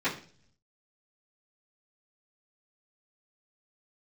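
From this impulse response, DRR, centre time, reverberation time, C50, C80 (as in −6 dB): −14.5 dB, 20 ms, 0.45 s, 10.5 dB, 15.0 dB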